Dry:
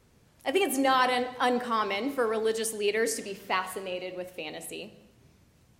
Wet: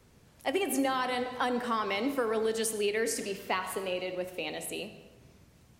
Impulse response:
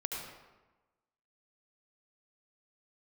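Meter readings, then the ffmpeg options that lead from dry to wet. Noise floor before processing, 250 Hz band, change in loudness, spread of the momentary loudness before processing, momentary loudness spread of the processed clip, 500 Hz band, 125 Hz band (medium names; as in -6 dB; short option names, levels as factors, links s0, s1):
-63 dBFS, -1.0 dB, -3.0 dB, 14 LU, 7 LU, -2.5 dB, +1.0 dB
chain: -filter_complex "[0:a]acrossover=split=180[s0][s1];[s1]acompressor=threshold=0.0398:ratio=10[s2];[s0][s2]amix=inputs=2:normalize=0,asplit=2[s3][s4];[1:a]atrim=start_sample=2205[s5];[s4][s5]afir=irnorm=-1:irlink=0,volume=0.266[s6];[s3][s6]amix=inputs=2:normalize=0"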